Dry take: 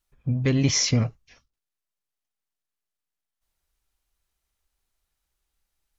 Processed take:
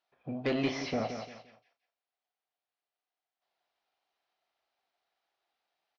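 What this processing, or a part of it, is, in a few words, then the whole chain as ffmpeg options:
intercom: -filter_complex "[0:a]highpass=370,lowpass=4900,equalizer=frequency=710:width_type=o:width=0.43:gain=11.5,asoftclip=type=tanh:threshold=-24dB,lowpass=frequency=5200:width=0.5412,lowpass=frequency=5200:width=1.3066,asplit=2[link_01][link_02];[link_02]adelay=36,volume=-10dB[link_03];[link_01][link_03]amix=inputs=2:normalize=0,aecho=1:1:173|346|519:0.355|0.103|0.0298,asplit=3[link_04][link_05][link_06];[link_04]afade=type=out:start_time=0.68:duration=0.02[link_07];[link_05]lowpass=frequency=1300:poles=1,afade=type=in:start_time=0.68:duration=0.02,afade=type=out:start_time=1.08:duration=0.02[link_08];[link_06]afade=type=in:start_time=1.08:duration=0.02[link_09];[link_07][link_08][link_09]amix=inputs=3:normalize=0"

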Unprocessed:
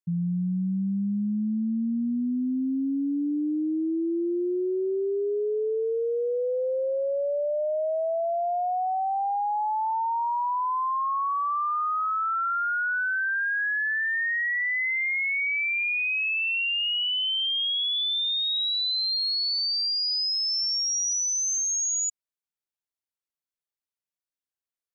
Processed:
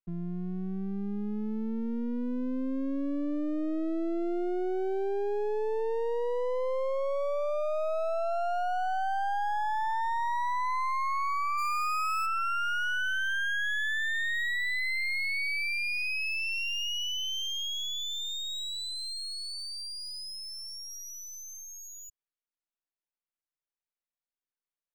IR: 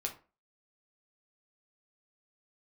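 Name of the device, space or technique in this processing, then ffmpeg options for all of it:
crystal radio: -filter_complex "[0:a]highpass=210,lowpass=2900,aeval=exprs='if(lt(val(0),0),0.251*val(0),val(0))':channel_layout=same,asplit=3[link_01][link_02][link_03];[link_01]afade=type=out:start_time=11.57:duration=0.02[link_04];[link_02]bass=frequency=250:gain=-1,treble=frequency=4000:gain=13,afade=type=in:start_time=11.57:duration=0.02,afade=type=out:start_time=12.25:duration=0.02[link_05];[link_03]afade=type=in:start_time=12.25:duration=0.02[link_06];[link_04][link_05][link_06]amix=inputs=3:normalize=0"

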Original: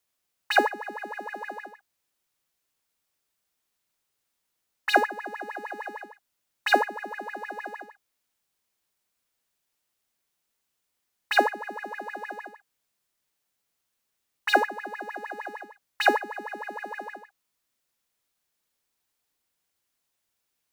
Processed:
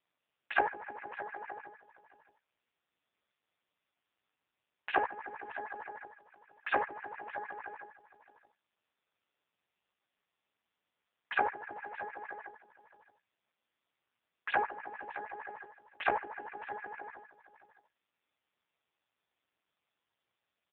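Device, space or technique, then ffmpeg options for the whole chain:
satellite phone: -filter_complex "[0:a]highpass=380,lowpass=3200,asplit=2[link_01][link_02];[link_02]adelay=17,volume=-4dB[link_03];[link_01][link_03]amix=inputs=2:normalize=0,aecho=1:1:619:0.15,volume=-6dB" -ar 8000 -c:a libopencore_amrnb -b:a 5150

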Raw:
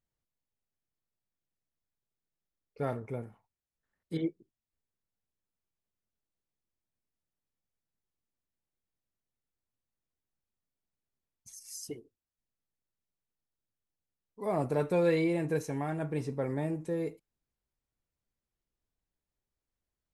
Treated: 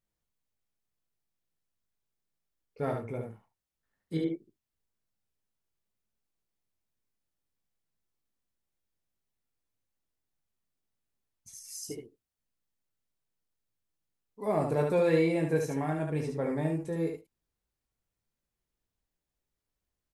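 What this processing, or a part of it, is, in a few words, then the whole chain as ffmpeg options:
slapback doubling: -filter_complex "[0:a]asplit=3[link_01][link_02][link_03];[link_02]adelay=19,volume=-6dB[link_04];[link_03]adelay=73,volume=-4dB[link_05];[link_01][link_04][link_05]amix=inputs=3:normalize=0"

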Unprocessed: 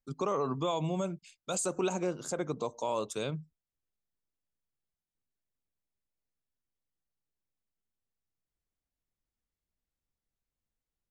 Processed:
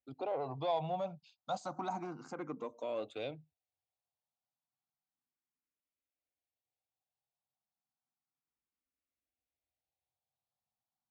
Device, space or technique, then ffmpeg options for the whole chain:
barber-pole phaser into a guitar amplifier: -filter_complex "[0:a]asplit=2[link_01][link_02];[link_02]afreqshift=0.32[link_03];[link_01][link_03]amix=inputs=2:normalize=1,asoftclip=type=tanh:threshold=-28.5dB,highpass=110,equalizer=frequency=180:width_type=q:width=4:gain=-8,equalizer=frequency=400:width_type=q:width=4:gain=-9,equalizer=frequency=760:width_type=q:width=4:gain=10,equalizer=frequency=1700:width_type=q:width=4:gain=-8,equalizer=frequency=3100:width_type=q:width=4:gain=-4,lowpass=frequency=4200:width=0.5412,lowpass=frequency=4200:width=1.3066"

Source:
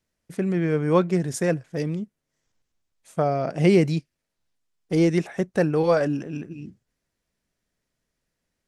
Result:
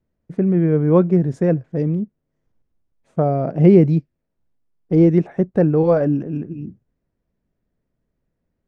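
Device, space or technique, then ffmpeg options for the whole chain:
through cloth: -af "lowpass=8700,tiltshelf=frequency=800:gain=6.5,highshelf=frequency=3600:gain=-16,volume=2dB"

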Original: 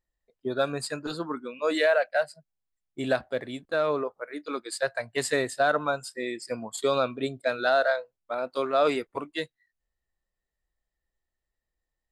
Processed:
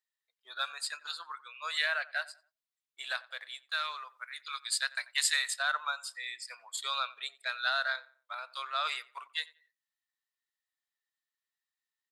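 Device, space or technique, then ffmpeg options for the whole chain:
headphones lying on a table: -filter_complex "[0:a]asettb=1/sr,asplit=3[link_01][link_02][link_03];[link_01]atrim=end=3.704[link_04];[link_02]atrim=start=3.7:end=5.54,asetpts=PTS-STARTPTS,afade=type=in:duration=0.004:curve=qsin,afade=type=out:start_time=1.836:duration=0.004:curve=qsin,tiltshelf=frequency=1300:gain=-6.5[link_05];[link_03]atrim=start=5.536[link_06];[link_04][link_05]acrossfade=duration=0.004:curve1=hsin:curve2=qsin[link_07];[link_07][link_06]acrossfade=duration=0.004:curve1=qsin:curve2=hsin,highpass=frequency=1100:width=0.5412,highpass=frequency=1100:width=1.3066,equalizer=frequency=3700:width_type=o:width=0.57:gain=5,asplit=2[link_08][link_09];[link_09]adelay=90,lowpass=frequency=2200:poles=1,volume=-19dB,asplit=2[link_10][link_11];[link_11]adelay=90,lowpass=frequency=2200:poles=1,volume=0.33,asplit=2[link_12][link_13];[link_13]adelay=90,lowpass=frequency=2200:poles=1,volume=0.33[link_14];[link_08][link_10][link_12][link_14]amix=inputs=4:normalize=0,volume=-2.5dB"

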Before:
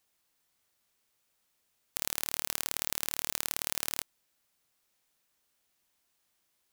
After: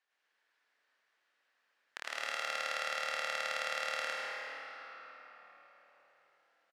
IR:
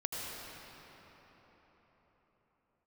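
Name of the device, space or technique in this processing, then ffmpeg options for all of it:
station announcement: -filter_complex "[0:a]highpass=470,lowpass=3600,equalizer=frequency=1700:width_type=o:width=0.52:gain=10.5,aecho=1:1:107.9|157.4:1|0.355[link_01];[1:a]atrim=start_sample=2205[link_02];[link_01][link_02]afir=irnorm=-1:irlink=0,volume=-4dB"

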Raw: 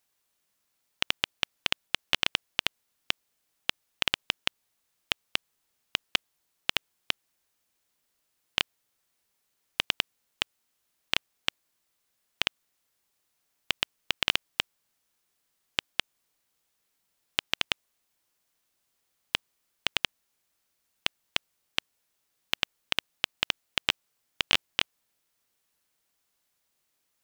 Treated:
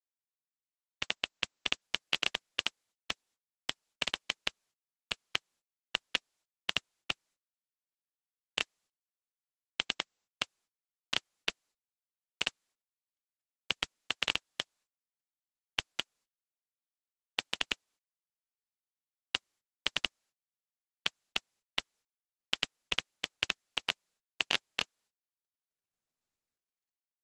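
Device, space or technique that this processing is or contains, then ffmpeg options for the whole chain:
video call: -af "highpass=140,dynaudnorm=framelen=210:gausssize=9:maxgain=11dB,agate=range=-23dB:threshold=-60dB:ratio=16:detection=peak,volume=-7dB" -ar 48000 -c:a libopus -b:a 12k

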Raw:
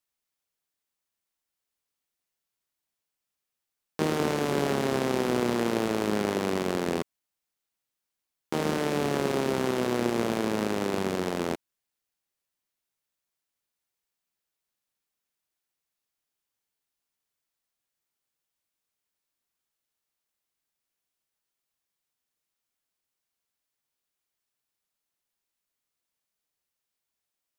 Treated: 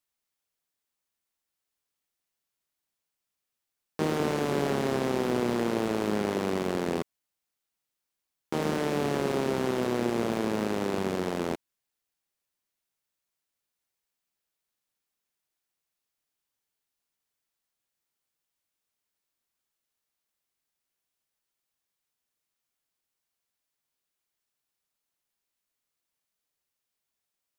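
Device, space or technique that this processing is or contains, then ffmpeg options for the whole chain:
saturation between pre-emphasis and de-emphasis: -af "highshelf=frequency=4400:gain=11.5,asoftclip=type=tanh:threshold=-13.5dB,highshelf=frequency=4400:gain=-11.5"

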